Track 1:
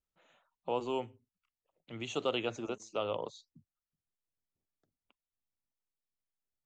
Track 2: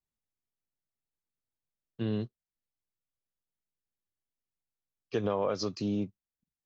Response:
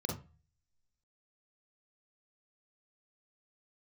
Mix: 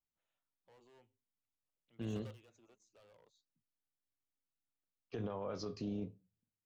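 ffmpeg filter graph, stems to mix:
-filter_complex "[0:a]highshelf=f=3k:g=6.5,asoftclip=type=hard:threshold=-35dB,volume=-15.5dB[a];[1:a]flanger=delay=8.4:depth=4.2:regen=73:speed=0.77:shape=sinusoidal,highshelf=f=3.5k:g=-7.5,tremolo=f=280:d=0.261,volume=0dB,asplit=3[b][c][d];[c]volume=-24dB[e];[d]apad=whole_len=293630[f];[a][f]sidechaingate=range=-11dB:threshold=-49dB:ratio=16:detection=peak[g];[2:a]atrim=start_sample=2205[h];[e][h]afir=irnorm=-1:irlink=0[i];[g][b][i]amix=inputs=3:normalize=0,alimiter=level_in=8.5dB:limit=-24dB:level=0:latency=1:release=18,volume=-8.5dB"

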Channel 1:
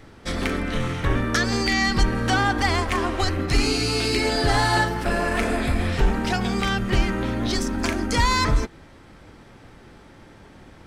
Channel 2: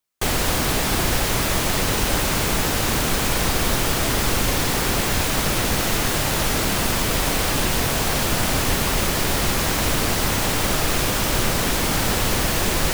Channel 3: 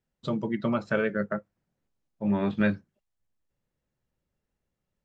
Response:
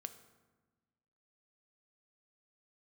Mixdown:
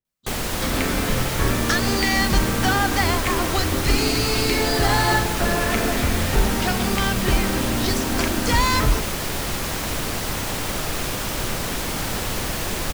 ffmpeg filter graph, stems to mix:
-filter_complex "[0:a]adelay=350,volume=0.5dB[a];[1:a]adelay=50,volume=-5dB[b];[2:a]volume=-9.5dB[c];[a][b][c]amix=inputs=3:normalize=0"

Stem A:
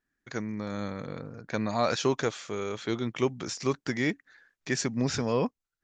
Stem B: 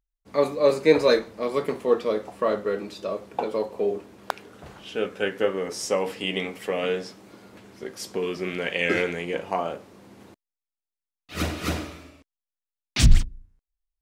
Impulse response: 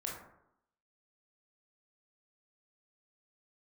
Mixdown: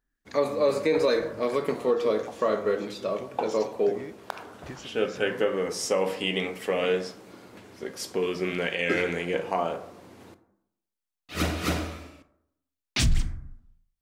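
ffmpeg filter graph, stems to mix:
-filter_complex "[0:a]acompressor=threshold=-37dB:ratio=6,acrossover=split=1700[a][b];[a]aeval=exprs='val(0)*(1-0.7/2+0.7/2*cos(2*PI*1.5*n/s))':c=same[c];[b]aeval=exprs='val(0)*(1-0.7/2-0.7/2*cos(2*PI*1.5*n/s))':c=same[d];[c][d]amix=inputs=2:normalize=0,volume=-1dB[e];[1:a]bandreject=f=50:t=h:w=6,bandreject=f=100:t=h:w=6,bandreject=f=150:t=h:w=6,bandreject=f=200:t=h:w=6,volume=-1.5dB,asplit=2[f][g];[g]volume=-8dB[h];[2:a]atrim=start_sample=2205[i];[h][i]afir=irnorm=-1:irlink=0[j];[e][f][j]amix=inputs=3:normalize=0,alimiter=limit=-14dB:level=0:latency=1:release=93"

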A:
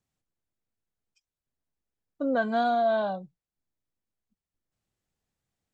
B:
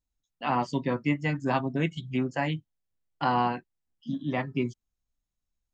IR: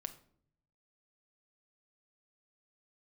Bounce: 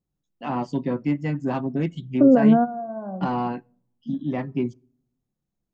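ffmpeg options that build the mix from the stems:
-filter_complex "[0:a]alimiter=limit=-23.5dB:level=0:latency=1,lowpass=f=1.5k:w=0.5412,lowpass=f=1.5k:w=1.3066,lowshelf=f=290:g=6.5,volume=3dB,asplit=2[a][b];[b]volume=-11.5dB[c];[1:a]asoftclip=type=tanh:threshold=-17.5dB,volume=-6dB,asplit=3[d][e][f];[e]volume=-15dB[g];[f]apad=whole_len=252829[h];[a][h]sidechaingate=range=-33dB:threshold=-45dB:ratio=16:detection=peak[i];[2:a]atrim=start_sample=2205[j];[c][g]amix=inputs=2:normalize=0[k];[k][j]afir=irnorm=-1:irlink=0[l];[i][d][l]amix=inputs=3:normalize=0,equalizer=f=260:w=0.41:g=10.5"

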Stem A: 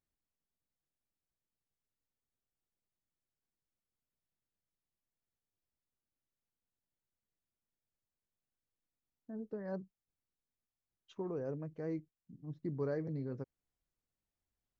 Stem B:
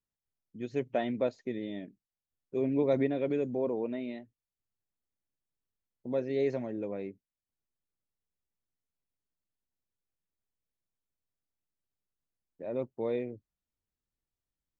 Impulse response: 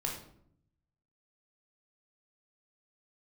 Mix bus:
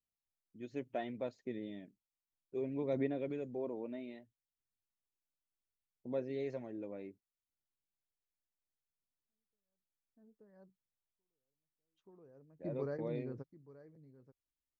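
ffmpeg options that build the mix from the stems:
-filter_complex "[0:a]volume=-3.5dB,asplit=2[a][b];[b]volume=-17.5dB[c];[1:a]aphaser=in_gain=1:out_gain=1:delay=3.5:decay=0.28:speed=0.65:type=sinusoidal,volume=-9dB,asplit=2[d][e];[e]apad=whole_len=652610[f];[a][f]sidechaingate=range=-51dB:threshold=-58dB:ratio=16:detection=peak[g];[c]aecho=0:1:879:1[h];[g][d][h]amix=inputs=3:normalize=0"

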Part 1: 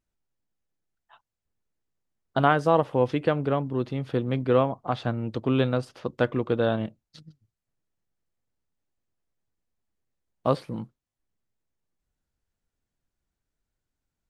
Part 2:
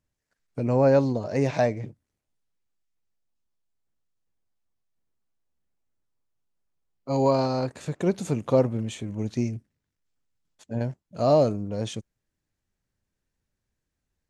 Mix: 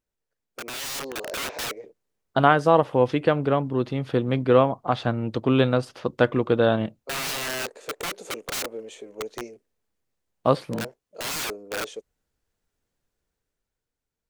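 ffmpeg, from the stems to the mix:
-filter_complex "[0:a]volume=-1.5dB[a];[1:a]highpass=f=450:t=q:w=4.9,aeval=exprs='(mod(7.94*val(0)+1,2)-1)/7.94':c=same,volume=-13dB[b];[a][b]amix=inputs=2:normalize=0,lowshelf=f=230:g=-3.5,dynaudnorm=f=110:g=17:m=7dB"

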